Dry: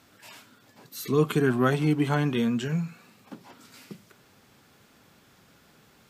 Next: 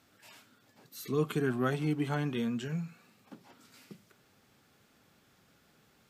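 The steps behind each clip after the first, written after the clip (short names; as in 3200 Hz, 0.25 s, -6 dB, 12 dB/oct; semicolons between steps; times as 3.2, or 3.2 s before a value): notch 1000 Hz, Q 18; gain -7.5 dB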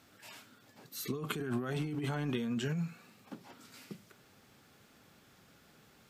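negative-ratio compressor -35 dBFS, ratio -1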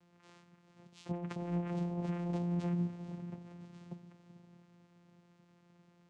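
diffused feedback echo 0.467 s, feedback 42%, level -10.5 dB; vocoder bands 4, saw 174 Hz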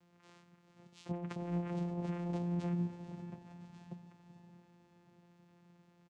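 feedback echo 0.577 s, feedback 57%, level -18 dB; gain -1 dB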